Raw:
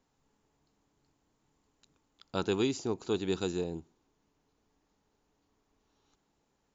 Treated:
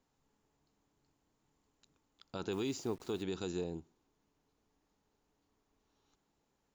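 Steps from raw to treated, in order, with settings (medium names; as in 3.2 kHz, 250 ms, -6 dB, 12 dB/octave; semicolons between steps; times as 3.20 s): 2.52–3.23 s: send-on-delta sampling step -50.5 dBFS; peak limiter -24 dBFS, peak gain reduction 8 dB; trim -3.5 dB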